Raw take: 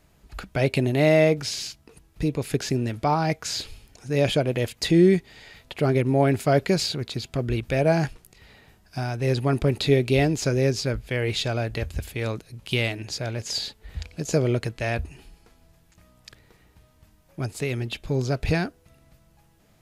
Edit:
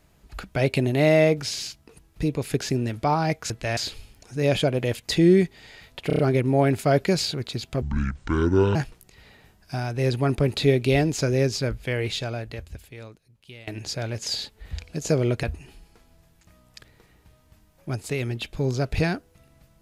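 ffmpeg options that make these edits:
-filter_complex "[0:a]asplit=11[a][b][c][d][e][f][g][h][i][j][k];[a]atrim=end=3.502[l];[b]atrim=start=14.668:end=14.942[m];[c]atrim=start=3.498:end=5.832[n];[d]atrim=start=5.798:end=5.832[o];[e]atrim=start=5.798:end=5.832[p];[f]atrim=start=5.798:end=5.832[q];[g]atrim=start=5.798:end=7.434[r];[h]atrim=start=7.43:end=7.99,asetpts=PTS-STARTPTS,asetrate=26460,aresample=44100[s];[i]atrim=start=7.986:end=12.91,asetpts=PTS-STARTPTS,afade=t=out:st=3.134:d=1.79:c=qua:silence=0.0944061[t];[j]atrim=start=12.91:end=14.672,asetpts=PTS-STARTPTS,afade=t=in:d=0.004:c=hsin:silence=0.0944061[u];[k]atrim=start=14.938[v];[l][m]acrossfade=d=0.004:c1=hsin:c2=hsin[w];[w][n]acrossfade=d=0.004:c1=hsin:c2=hsin[x];[x][o]acrossfade=d=0.004:c1=hsin:c2=hsin[y];[y][p]acrossfade=d=0.004:c1=hsin:c2=hsin[z];[z][q]acrossfade=d=0.004:c1=hsin:c2=hsin[aa];[aa][r]acrossfade=d=0.004:c1=hsin:c2=hsin[ab];[ab][s]acrossfade=d=0.004:c1=hsin:c2=hsin[ac];[t][u]concat=n=2:v=0:a=1[ad];[ac][ad]acrossfade=d=0.004:c1=hsin:c2=hsin[ae];[ae][v]acrossfade=d=0.004:c1=hsin:c2=hsin"

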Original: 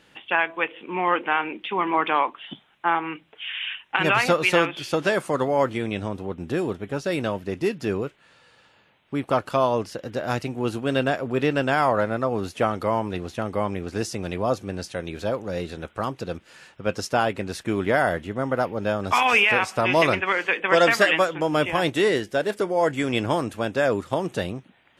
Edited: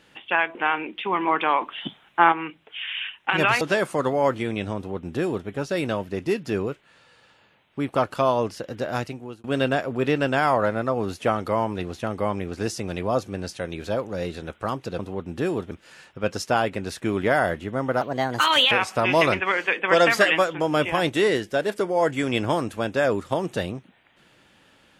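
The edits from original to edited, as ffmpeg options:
-filter_complex "[0:a]asplit=10[a][b][c][d][e][f][g][h][i][j];[a]atrim=end=0.552[k];[b]atrim=start=1.208:end=2.272[l];[c]atrim=start=2.268:end=2.982,asetpts=PTS-STARTPTS,volume=5.5dB[m];[d]atrim=start=2.978:end=4.272[n];[e]atrim=start=4.958:end=10.79,asetpts=PTS-STARTPTS,afade=t=out:st=5.282:d=0.55[o];[f]atrim=start=10.79:end=16.342,asetpts=PTS-STARTPTS,afade=t=in:d=0.004:c=hsin[p];[g]atrim=start=6.108:end=6.832[q];[h]atrim=start=16.338:end=18.644[r];[i]atrim=start=18.64:end=19.52,asetpts=PTS-STARTPTS,asetrate=55125,aresample=44100,atrim=end_sample=31046,asetpts=PTS-STARTPTS[s];[j]atrim=start=19.516[t];[k][l]acrossfade=d=0.004:c1=hsin:c2=hsin[u];[u][m]acrossfade=d=0.004:c1=hsin:c2=hsin[v];[v][n]acrossfade=d=0.004:c1=hsin:c2=hsin[w];[o][p]concat=n=2:v=0:a=1[x];[w][x]acrossfade=d=0.004:c1=hsin:c2=hsin[y];[y][q]acrossfade=d=0.004:c1=hsin:c2=hsin[z];[z][r]acrossfade=d=0.004:c1=hsin:c2=hsin[aa];[aa][s]acrossfade=d=0.004:c1=hsin:c2=hsin[ab];[ab][t]acrossfade=d=0.004:c1=hsin:c2=hsin"

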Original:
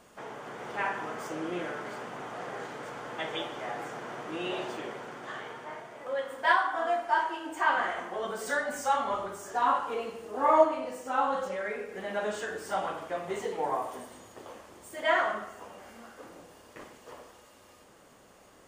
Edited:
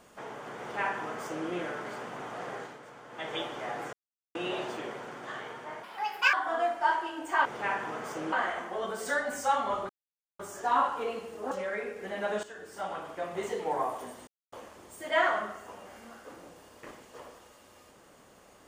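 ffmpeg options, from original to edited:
-filter_complex "[0:a]asplit=14[a][b][c][d][e][f][g][h][i][j][k][l][m][n];[a]atrim=end=2.8,asetpts=PTS-STARTPTS,afade=t=out:st=2.53:d=0.27:silence=0.354813[o];[b]atrim=start=2.8:end=3.09,asetpts=PTS-STARTPTS,volume=-9dB[p];[c]atrim=start=3.09:end=3.93,asetpts=PTS-STARTPTS,afade=t=in:d=0.27:silence=0.354813,afade=t=out:st=0.836:d=0.004:c=hsin[q];[d]atrim=start=3.93:end=4.35,asetpts=PTS-STARTPTS,volume=0[r];[e]atrim=start=4.35:end=5.834,asetpts=PTS-STARTPTS,afade=t=in:d=0.004:c=hsin[s];[f]atrim=start=5.83:end=6.61,asetpts=PTS-STARTPTS,asetrate=68355,aresample=44100,atrim=end_sample=22192,asetpts=PTS-STARTPTS[t];[g]atrim=start=6.606:end=7.732[u];[h]atrim=start=0.598:end=1.472[v];[i]atrim=start=7.728:end=9.3,asetpts=PTS-STARTPTS,afade=t=out:st=1.568:d=0.004:c=hsin,apad=pad_dur=0.5[w];[j]atrim=start=9.3:end=10.422,asetpts=PTS-STARTPTS,afade=t=in:d=0.004:c=hsin[x];[k]atrim=start=11.438:end=12.36,asetpts=PTS-STARTPTS,afade=t=out:st=0.918:d=0.004:c=hsin:silence=0.237137[y];[l]atrim=start=12.36:end=14.2,asetpts=PTS-STARTPTS,afade=t=in:d=0.99:silence=0.237137,afade=t=out:st=1.836:d=0.004:c=hsin[z];[m]atrim=start=14.2:end=14.45,asetpts=PTS-STARTPTS,volume=0[aa];[n]atrim=start=14.45,asetpts=PTS-STARTPTS,afade=t=in:d=0.004:c=hsin[ab];[o][p][q][r][s]concat=n=5:v=0:a=1[ac];[ac][t]acrossfade=d=0.004:c1=hsin:c2=hsin[ad];[ad][u]acrossfade=d=0.004:c1=hsin:c2=hsin[ae];[ae][v]acrossfade=d=0.004:c1=hsin:c2=hsin[af];[w][x]concat=n=2:v=0:a=1[ag];[af][ag]acrossfade=d=0.004:c1=hsin:c2=hsin[ah];[y][z][aa][ab]concat=n=4:v=0:a=1[ai];[ah][ai]acrossfade=d=0.004:c1=hsin:c2=hsin"

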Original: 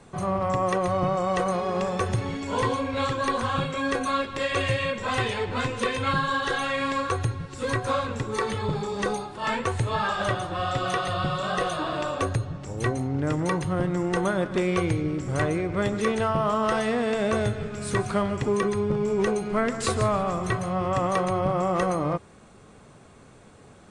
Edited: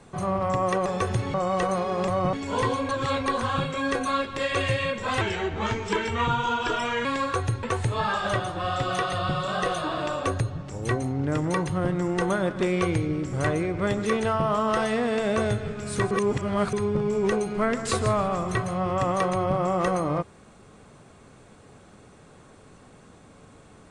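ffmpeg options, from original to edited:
-filter_complex "[0:a]asplit=12[a][b][c][d][e][f][g][h][i][j][k][l];[a]atrim=end=0.862[m];[b]atrim=start=1.848:end=2.332[n];[c]atrim=start=1.108:end=1.852[o];[d]atrim=start=0.858:end=1.112[p];[e]atrim=start=2.328:end=2.892[q];[f]atrim=start=2.888:end=3.262,asetpts=PTS-STARTPTS,areverse[r];[g]atrim=start=3.258:end=5.214[s];[h]atrim=start=5.21:end=6.81,asetpts=PTS-STARTPTS,asetrate=38367,aresample=44100,atrim=end_sample=81103,asetpts=PTS-STARTPTS[t];[i]atrim=start=6.806:end=7.392[u];[j]atrim=start=9.578:end=18.062[v];[k]atrim=start=18.058:end=18.682,asetpts=PTS-STARTPTS,areverse[w];[l]atrim=start=18.678[x];[m][n]acrossfade=d=0.004:c1=hsin:c2=hsin[y];[y][o]acrossfade=d=0.004:c1=hsin:c2=hsin[z];[z][p]acrossfade=d=0.004:c1=hsin:c2=hsin[aa];[aa][q]acrossfade=d=0.004:c1=hsin:c2=hsin[ab];[ab][r]acrossfade=d=0.004:c1=hsin:c2=hsin[ac];[ac][s]acrossfade=d=0.004:c1=hsin:c2=hsin[ad];[ad][t]acrossfade=d=0.004:c1=hsin:c2=hsin[ae];[ae][u]acrossfade=d=0.004:c1=hsin:c2=hsin[af];[af][v]acrossfade=d=0.004:c1=hsin:c2=hsin[ag];[ag][w]acrossfade=d=0.004:c1=hsin:c2=hsin[ah];[ah][x]acrossfade=d=0.004:c1=hsin:c2=hsin"

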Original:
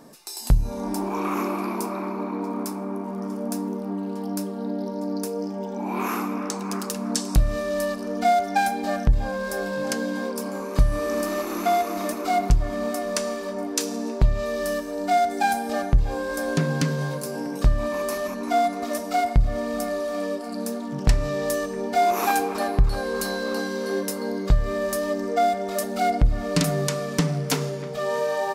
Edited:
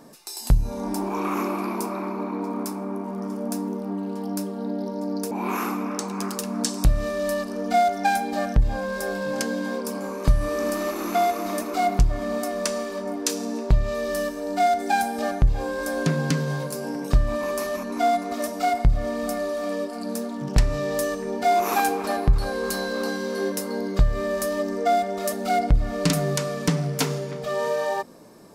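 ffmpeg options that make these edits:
-filter_complex "[0:a]asplit=2[a][b];[a]atrim=end=5.312[c];[b]atrim=start=5.818[d];[c][d]acrossfade=d=0.004:c1=hsin:c2=hsin"

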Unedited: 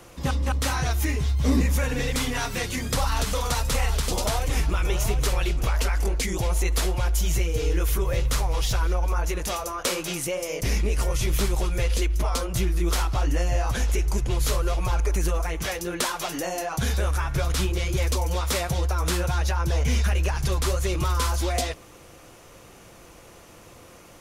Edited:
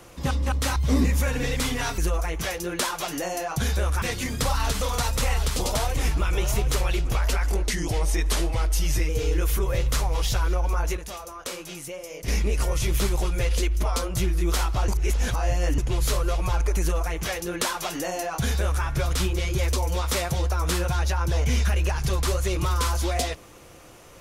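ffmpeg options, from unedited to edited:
-filter_complex "[0:a]asplit=10[a][b][c][d][e][f][g][h][i][j];[a]atrim=end=0.762[k];[b]atrim=start=1.318:end=2.542[l];[c]atrim=start=15.188:end=17.232[m];[d]atrim=start=2.538:end=6.164[n];[e]atrim=start=6.16:end=7.48,asetpts=PTS-STARTPTS,asetrate=40131,aresample=44100,atrim=end_sample=63969,asetpts=PTS-STARTPTS[o];[f]atrim=start=7.476:end=9.362[p];[g]atrim=start=9.358:end=10.672,asetpts=PTS-STARTPTS,volume=-8dB[q];[h]atrim=start=10.668:end=13.272[r];[i]atrim=start=13.268:end=14.172,asetpts=PTS-STARTPTS,areverse[s];[j]atrim=start=14.168[t];[k][l]acrossfade=d=0.004:c1=hsin:c2=hsin[u];[u][m]acrossfade=d=0.004:c1=hsin:c2=hsin[v];[v][n]acrossfade=d=0.004:c1=hsin:c2=hsin[w];[w][o]acrossfade=d=0.004:c1=hsin:c2=hsin[x];[x][p]acrossfade=d=0.004:c1=hsin:c2=hsin[y];[y][q]acrossfade=d=0.004:c1=hsin:c2=hsin[z];[z][r]acrossfade=d=0.004:c1=hsin:c2=hsin[aa];[aa][s]acrossfade=d=0.004:c1=hsin:c2=hsin[ab];[ab][t]acrossfade=d=0.004:c1=hsin:c2=hsin"

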